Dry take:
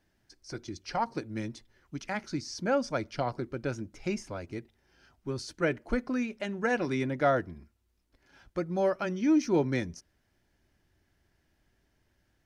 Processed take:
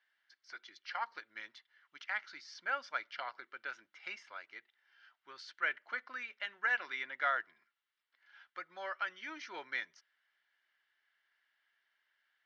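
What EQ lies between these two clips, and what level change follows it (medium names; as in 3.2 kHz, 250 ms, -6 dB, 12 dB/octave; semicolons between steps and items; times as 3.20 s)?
Butterworth band-pass 2.2 kHz, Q 0.95; distance through air 56 m; band-stop 2.5 kHz, Q 8.8; +2.5 dB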